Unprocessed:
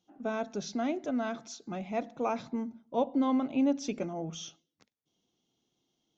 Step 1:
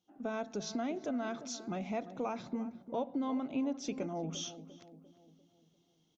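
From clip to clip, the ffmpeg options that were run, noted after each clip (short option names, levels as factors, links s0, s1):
-filter_complex "[0:a]acompressor=threshold=0.0126:ratio=3,asplit=2[s0][s1];[s1]adelay=347,lowpass=f=1100:p=1,volume=0.237,asplit=2[s2][s3];[s3]adelay=347,lowpass=f=1100:p=1,volume=0.52,asplit=2[s4][s5];[s5]adelay=347,lowpass=f=1100:p=1,volume=0.52,asplit=2[s6][s7];[s7]adelay=347,lowpass=f=1100:p=1,volume=0.52,asplit=2[s8][s9];[s9]adelay=347,lowpass=f=1100:p=1,volume=0.52[s10];[s0][s2][s4][s6][s8][s10]amix=inputs=6:normalize=0,dynaudnorm=f=140:g=3:m=2.24,volume=0.596"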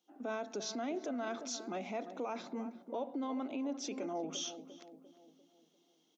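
-af "alimiter=level_in=2.66:limit=0.0631:level=0:latency=1:release=16,volume=0.376,highpass=f=250:w=0.5412,highpass=f=250:w=1.3066,volume=1.33"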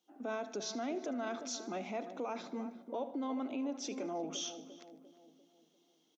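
-af "aecho=1:1:76|152|228|304:0.141|0.072|0.0367|0.0187"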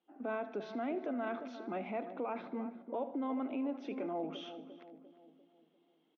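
-af "lowpass=f=2700:w=0.5412,lowpass=f=2700:w=1.3066,volume=1.12"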